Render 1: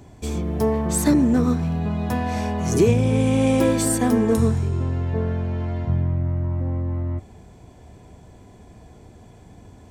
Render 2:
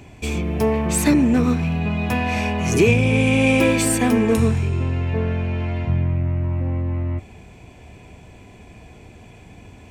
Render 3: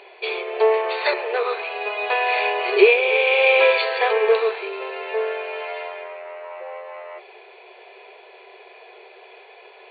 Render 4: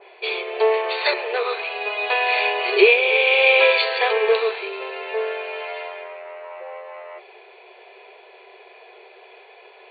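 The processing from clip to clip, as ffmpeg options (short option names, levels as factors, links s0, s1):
-filter_complex "[0:a]equalizer=f=2500:t=o:w=0.57:g=14.5,asplit=2[s0][s1];[s1]asoftclip=type=tanh:threshold=0.1,volume=0.282[s2];[s0][s2]amix=inputs=2:normalize=0"
-af "afftfilt=real='re*between(b*sr/4096,360,4600)':imag='im*between(b*sr/4096,360,4600)':win_size=4096:overlap=0.75,volume=1.68"
-af "adynamicequalizer=threshold=0.02:dfrequency=2500:dqfactor=0.7:tfrequency=2500:tqfactor=0.7:attack=5:release=100:ratio=0.375:range=3.5:mode=boostabove:tftype=highshelf,volume=0.891"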